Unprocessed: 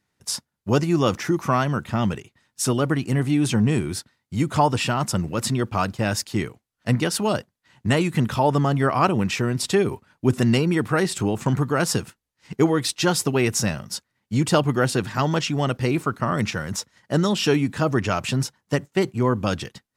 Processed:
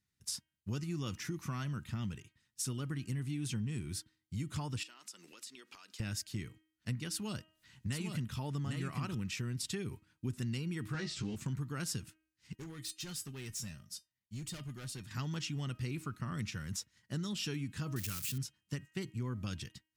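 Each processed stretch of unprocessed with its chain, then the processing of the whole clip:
4.83–6.00 s: high-pass 330 Hz 24 dB/octave + peaking EQ 4.6 kHz +8.5 dB 2.7 oct + compression 12:1, threshold -35 dBFS
7.12–9.15 s: delay 802 ms -3.5 dB + upward compressor, threshold -39 dBFS
10.93–11.36 s: zero-crossing glitches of -25 dBFS + low-pass 5.6 kHz 24 dB/octave + doubling 14 ms -4 dB
12.55–15.11 s: peaking EQ 11 kHz +4 dB 1.9 oct + feedback comb 610 Hz, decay 0.16 s, mix 70% + hard clipper -27.5 dBFS
17.96–18.38 s: zero-crossing glitches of -16 dBFS + peaking EQ 730 Hz -12.5 dB 0.64 oct
whole clip: amplifier tone stack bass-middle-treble 6-0-2; de-hum 315.4 Hz, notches 10; compression 3:1, threshold -42 dBFS; trim +6 dB

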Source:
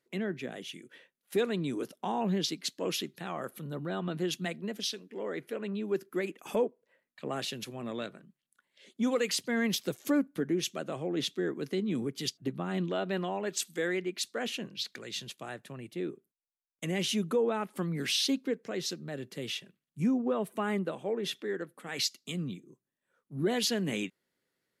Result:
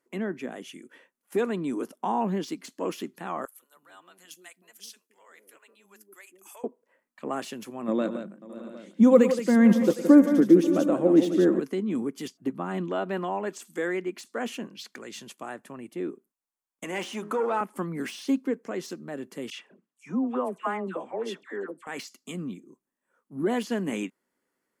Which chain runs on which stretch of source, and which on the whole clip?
3.45–6.64 s: differentiator + bands offset in time highs, lows 170 ms, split 440 Hz
7.88–11.60 s: small resonant body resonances 200/320/520/3700 Hz, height 12 dB + multi-tap echo 109/169/539/615/687/762 ms -16.5/-9/-19/-18.5/-19.5/-17.5 dB
16.84–17.61 s: de-hum 69.3 Hz, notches 27 + waveshaping leveller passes 1 + frequency weighting A
19.50–21.87 s: high-pass 340 Hz 6 dB/octave + distance through air 57 m + phase dispersion lows, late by 97 ms, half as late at 1.2 kHz
whole clip: band-stop 3.8 kHz, Q 16; de-esser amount 90%; graphic EQ 125/250/1000/4000/8000 Hz -9/+7/+8/-6/+4 dB

